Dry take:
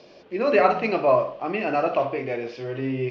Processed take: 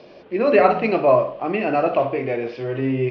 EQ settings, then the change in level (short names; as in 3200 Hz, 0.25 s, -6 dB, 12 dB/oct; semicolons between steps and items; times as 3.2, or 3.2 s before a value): dynamic EQ 1200 Hz, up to -3 dB, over -31 dBFS, Q 0.8; air absorption 180 m; +5.5 dB